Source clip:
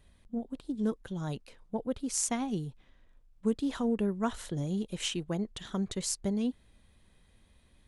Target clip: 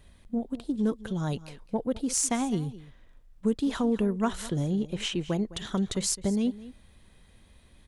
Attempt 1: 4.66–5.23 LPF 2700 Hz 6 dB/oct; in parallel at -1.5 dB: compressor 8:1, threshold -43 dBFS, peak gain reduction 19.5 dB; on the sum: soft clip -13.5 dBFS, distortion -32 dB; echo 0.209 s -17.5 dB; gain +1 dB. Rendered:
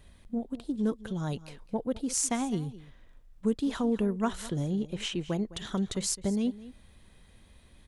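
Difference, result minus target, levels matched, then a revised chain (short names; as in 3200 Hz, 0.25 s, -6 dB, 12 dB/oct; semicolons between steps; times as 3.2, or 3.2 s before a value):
compressor: peak gain reduction +10 dB
4.66–5.23 LPF 2700 Hz 6 dB/oct; in parallel at -1.5 dB: compressor 8:1, threshold -31.5 dBFS, peak gain reduction 9.5 dB; on the sum: soft clip -13.5 dBFS, distortion -29 dB; echo 0.209 s -17.5 dB; gain +1 dB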